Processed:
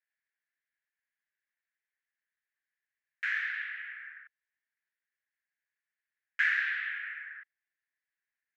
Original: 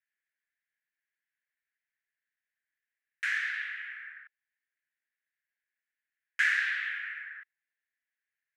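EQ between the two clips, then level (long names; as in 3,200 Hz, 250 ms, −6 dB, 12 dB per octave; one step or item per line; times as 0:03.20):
high-pass filter 1,100 Hz 12 dB per octave
head-to-tape spacing loss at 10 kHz 25 dB
+4.0 dB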